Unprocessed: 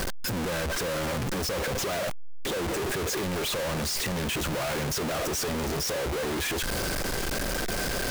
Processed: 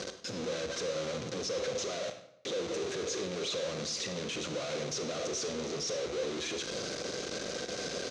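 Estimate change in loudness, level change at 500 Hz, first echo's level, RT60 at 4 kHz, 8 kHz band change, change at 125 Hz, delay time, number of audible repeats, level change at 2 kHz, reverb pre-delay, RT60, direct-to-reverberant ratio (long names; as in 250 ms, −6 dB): −6.5 dB, −3.5 dB, −16.0 dB, 0.60 s, −6.0 dB, −12.5 dB, 101 ms, 1, −10.0 dB, 33 ms, 0.75 s, 7.5 dB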